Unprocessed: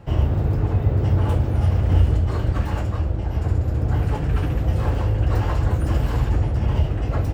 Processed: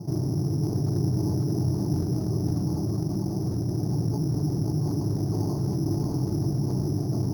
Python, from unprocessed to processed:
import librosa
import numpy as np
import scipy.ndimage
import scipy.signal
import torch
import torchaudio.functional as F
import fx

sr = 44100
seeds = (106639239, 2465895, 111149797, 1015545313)

p1 = fx.tilt_eq(x, sr, slope=-2.0)
p2 = fx.fixed_phaser(p1, sr, hz=340.0, stages=8)
p3 = fx.quant_float(p2, sr, bits=2)
p4 = fx.ladder_bandpass(p3, sr, hz=250.0, resonance_pct=40)
p5 = p4 + fx.echo_single(p4, sr, ms=539, db=-3.5, dry=0)
p6 = np.repeat(p5[::8], 8)[:len(p5)]
p7 = fx.env_flatten(p6, sr, amount_pct=50)
y = p7 * librosa.db_to_amplitude(7.0)